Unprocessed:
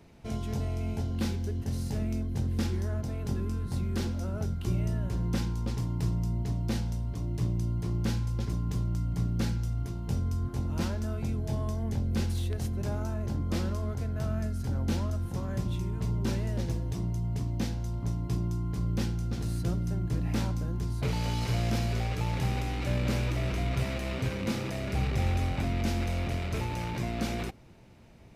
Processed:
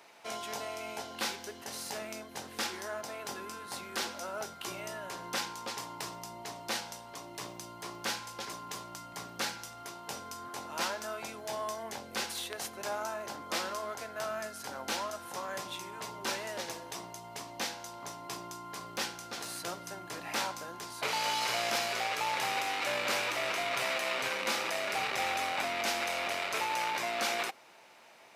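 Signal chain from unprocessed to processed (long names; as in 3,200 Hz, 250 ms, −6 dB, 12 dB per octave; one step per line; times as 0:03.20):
Chebyshev high-pass filter 870 Hz, order 2
level +8 dB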